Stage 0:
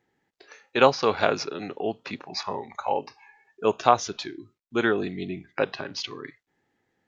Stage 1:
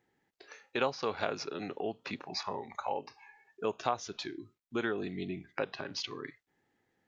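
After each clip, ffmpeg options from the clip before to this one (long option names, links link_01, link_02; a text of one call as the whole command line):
ffmpeg -i in.wav -af "acompressor=threshold=-32dB:ratio=2,volume=-3dB" out.wav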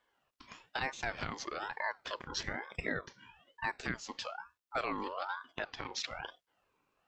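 ffmpeg -i in.wav -af "alimiter=limit=-22dB:level=0:latency=1:release=264,aeval=exprs='val(0)*sin(2*PI*1000*n/s+1000*0.35/1.1*sin(2*PI*1.1*n/s))':channel_layout=same,volume=2dB" out.wav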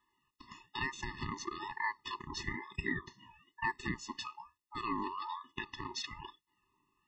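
ffmpeg -i in.wav -af "bandreject=frequency=4700:width=23,afftfilt=real='re*eq(mod(floor(b*sr/1024/420),2),0)':imag='im*eq(mod(floor(b*sr/1024/420),2),0)':win_size=1024:overlap=0.75,volume=2.5dB" out.wav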